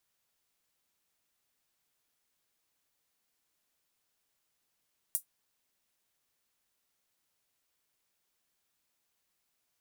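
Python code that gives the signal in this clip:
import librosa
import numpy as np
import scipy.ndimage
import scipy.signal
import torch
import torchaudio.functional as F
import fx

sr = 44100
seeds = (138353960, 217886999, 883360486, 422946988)

y = fx.drum_hat(sr, length_s=0.24, from_hz=9300.0, decay_s=0.11)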